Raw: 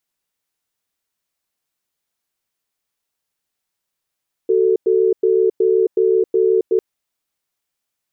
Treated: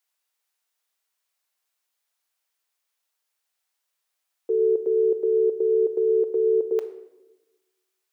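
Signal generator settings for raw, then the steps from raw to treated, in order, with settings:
cadence 375 Hz, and 443 Hz, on 0.27 s, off 0.10 s, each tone -14.5 dBFS 2.30 s
high-pass 610 Hz 12 dB/octave; simulated room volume 450 m³, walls mixed, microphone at 0.47 m

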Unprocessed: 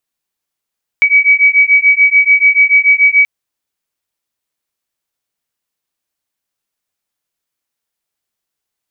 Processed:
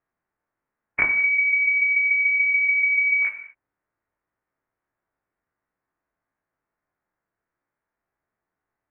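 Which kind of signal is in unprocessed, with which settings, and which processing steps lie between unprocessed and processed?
beating tones 2.27 kHz, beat 6.9 Hz, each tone -9 dBFS 2.23 s
every event in the spectrogram widened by 60 ms; steep low-pass 1.9 kHz 36 dB/octave; gated-style reverb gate 270 ms falling, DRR 5.5 dB

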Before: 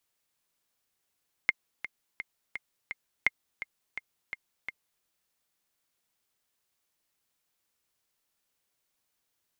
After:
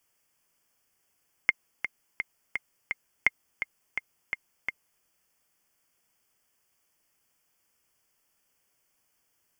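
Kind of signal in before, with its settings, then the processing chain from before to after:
metronome 169 bpm, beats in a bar 5, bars 2, 2.12 kHz, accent 13.5 dB -9 dBFS
in parallel at +1 dB: peak limiter -19.5 dBFS; on the sum: Butterworth band-stop 3.9 kHz, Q 3.1

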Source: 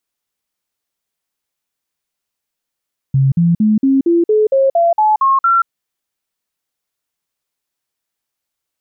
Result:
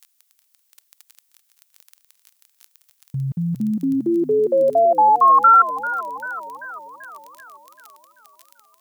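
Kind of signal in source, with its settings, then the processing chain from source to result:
stepped sine 135 Hz up, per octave 3, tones 11, 0.18 s, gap 0.05 s -8.5 dBFS
crackle 16 per s -37 dBFS; tilt EQ +4 dB/octave; modulated delay 390 ms, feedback 57%, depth 99 cents, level -14 dB

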